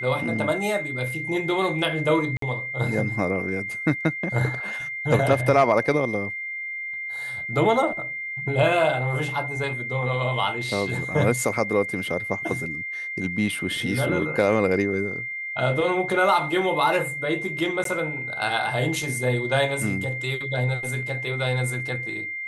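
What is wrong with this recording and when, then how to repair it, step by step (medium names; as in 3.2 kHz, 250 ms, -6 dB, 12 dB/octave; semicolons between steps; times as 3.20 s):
whine 2.1 kHz -29 dBFS
2.37–2.42 s: dropout 53 ms
17.84–17.85 s: dropout 13 ms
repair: band-stop 2.1 kHz, Q 30; interpolate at 2.37 s, 53 ms; interpolate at 17.84 s, 13 ms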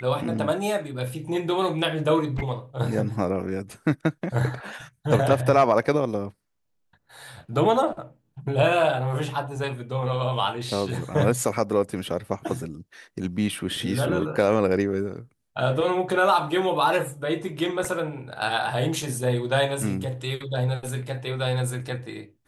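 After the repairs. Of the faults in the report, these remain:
nothing left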